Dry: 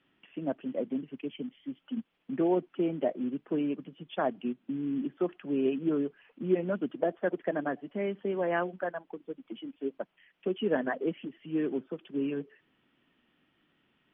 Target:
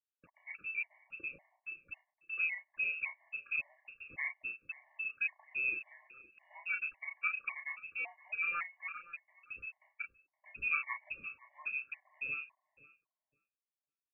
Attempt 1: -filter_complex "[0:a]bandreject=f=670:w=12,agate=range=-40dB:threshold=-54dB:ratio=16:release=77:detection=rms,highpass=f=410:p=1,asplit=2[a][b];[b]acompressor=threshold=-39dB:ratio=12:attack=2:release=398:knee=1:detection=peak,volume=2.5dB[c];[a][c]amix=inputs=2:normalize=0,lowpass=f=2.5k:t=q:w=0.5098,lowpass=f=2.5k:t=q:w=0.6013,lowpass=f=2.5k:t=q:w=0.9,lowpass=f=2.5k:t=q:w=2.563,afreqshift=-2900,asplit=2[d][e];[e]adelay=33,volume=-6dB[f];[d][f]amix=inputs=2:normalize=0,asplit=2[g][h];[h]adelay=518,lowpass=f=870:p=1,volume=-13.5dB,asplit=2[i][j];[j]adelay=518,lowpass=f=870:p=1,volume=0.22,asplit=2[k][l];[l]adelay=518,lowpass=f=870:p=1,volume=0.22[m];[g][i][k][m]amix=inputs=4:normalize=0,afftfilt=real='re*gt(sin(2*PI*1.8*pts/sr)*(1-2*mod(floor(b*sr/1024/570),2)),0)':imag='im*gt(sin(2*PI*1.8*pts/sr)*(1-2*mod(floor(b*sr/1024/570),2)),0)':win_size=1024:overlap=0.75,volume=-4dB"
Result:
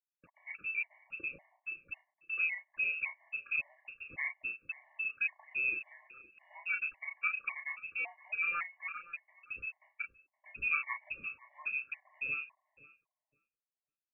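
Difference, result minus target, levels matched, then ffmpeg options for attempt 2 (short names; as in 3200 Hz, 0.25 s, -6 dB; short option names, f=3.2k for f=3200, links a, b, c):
compressor: peak gain reduction -10 dB
-filter_complex "[0:a]bandreject=f=670:w=12,agate=range=-40dB:threshold=-54dB:ratio=16:release=77:detection=rms,highpass=f=410:p=1,asplit=2[a][b];[b]acompressor=threshold=-50dB:ratio=12:attack=2:release=398:knee=1:detection=peak,volume=2.5dB[c];[a][c]amix=inputs=2:normalize=0,lowpass=f=2.5k:t=q:w=0.5098,lowpass=f=2.5k:t=q:w=0.6013,lowpass=f=2.5k:t=q:w=0.9,lowpass=f=2.5k:t=q:w=2.563,afreqshift=-2900,asplit=2[d][e];[e]adelay=33,volume=-6dB[f];[d][f]amix=inputs=2:normalize=0,asplit=2[g][h];[h]adelay=518,lowpass=f=870:p=1,volume=-13.5dB,asplit=2[i][j];[j]adelay=518,lowpass=f=870:p=1,volume=0.22,asplit=2[k][l];[l]adelay=518,lowpass=f=870:p=1,volume=0.22[m];[g][i][k][m]amix=inputs=4:normalize=0,afftfilt=real='re*gt(sin(2*PI*1.8*pts/sr)*(1-2*mod(floor(b*sr/1024/570),2)),0)':imag='im*gt(sin(2*PI*1.8*pts/sr)*(1-2*mod(floor(b*sr/1024/570),2)),0)':win_size=1024:overlap=0.75,volume=-4dB"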